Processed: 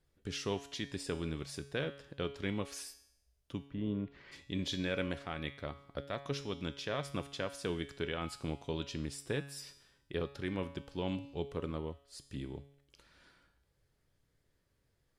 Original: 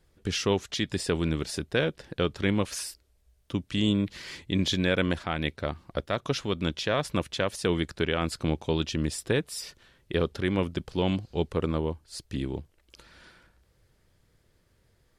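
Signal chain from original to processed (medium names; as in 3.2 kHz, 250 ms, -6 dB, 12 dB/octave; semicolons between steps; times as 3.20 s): 3.65–4.31 s: low-pass 1 kHz -> 2.2 kHz 12 dB/octave; feedback comb 140 Hz, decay 0.74 s, harmonics all, mix 70%; trim -1.5 dB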